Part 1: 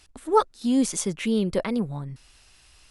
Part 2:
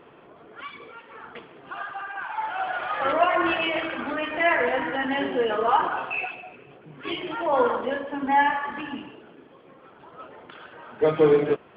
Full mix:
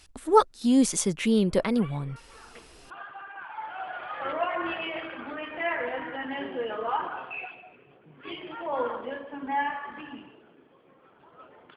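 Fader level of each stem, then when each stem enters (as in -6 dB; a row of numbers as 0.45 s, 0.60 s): +1.0 dB, -8.0 dB; 0.00 s, 1.20 s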